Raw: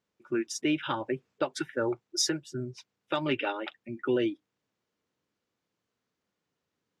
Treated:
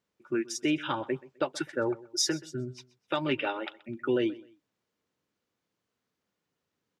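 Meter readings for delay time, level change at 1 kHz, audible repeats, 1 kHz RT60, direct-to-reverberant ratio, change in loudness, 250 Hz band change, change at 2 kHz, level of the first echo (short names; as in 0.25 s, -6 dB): 0.128 s, 0.0 dB, 2, none, none, 0.0 dB, 0.0 dB, 0.0 dB, -20.5 dB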